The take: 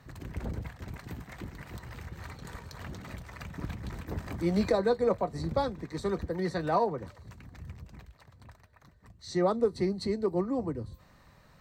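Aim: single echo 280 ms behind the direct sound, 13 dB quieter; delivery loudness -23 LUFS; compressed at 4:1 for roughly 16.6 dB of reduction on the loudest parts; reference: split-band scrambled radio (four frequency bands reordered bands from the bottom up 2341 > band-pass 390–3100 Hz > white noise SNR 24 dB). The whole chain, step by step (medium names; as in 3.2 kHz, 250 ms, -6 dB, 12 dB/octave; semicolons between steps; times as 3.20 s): compression 4:1, threshold -42 dBFS; delay 280 ms -13 dB; four frequency bands reordered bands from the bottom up 2341; band-pass 390–3100 Hz; white noise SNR 24 dB; trim +26.5 dB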